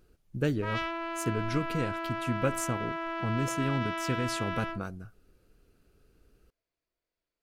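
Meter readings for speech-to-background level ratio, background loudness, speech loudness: 1.5 dB, -35.0 LUFS, -33.5 LUFS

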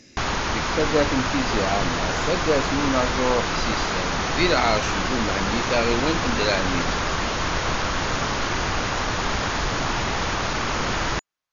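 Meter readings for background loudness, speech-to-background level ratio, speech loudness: -24.5 LUFS, -1.0 dB, -25.5 LUFS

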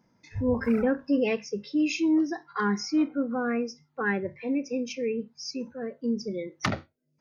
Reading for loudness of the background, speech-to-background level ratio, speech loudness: -40.0 LUFS, 11.5 dB, -28.5 LUFS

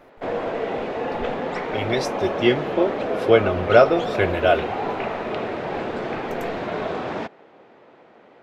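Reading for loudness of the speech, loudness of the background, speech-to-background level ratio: -21.0 LUFS, -27.0 LUFS, 6.0 dB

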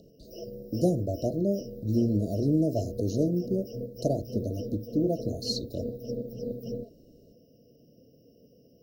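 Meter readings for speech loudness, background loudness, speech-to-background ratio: -29.5 LUFS, -39.5 LUFS, 10.0 dB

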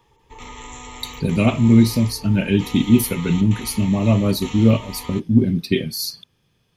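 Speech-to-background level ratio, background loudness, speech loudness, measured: 18.0 dB, -36.5 LUFS, -18.5 LUFS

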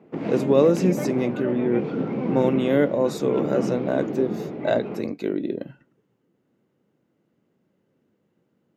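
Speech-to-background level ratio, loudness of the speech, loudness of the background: 5.0 dB, -24.0 LUFS, -29.0 LUFS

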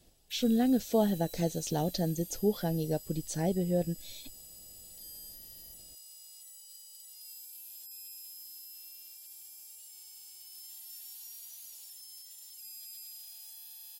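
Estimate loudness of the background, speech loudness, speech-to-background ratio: -46.0 LUFS, -31.0 LUFS, 15.0 dB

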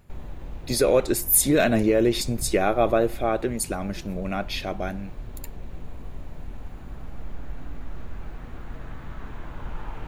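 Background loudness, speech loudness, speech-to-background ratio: -41.5 LUFS, -23.0 LUFS, 18.5 dB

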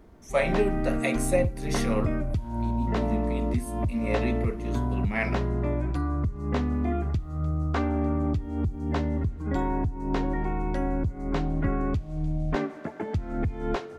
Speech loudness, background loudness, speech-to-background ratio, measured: -31.0 LUFS, -29.0 LUFS, -2.0 dB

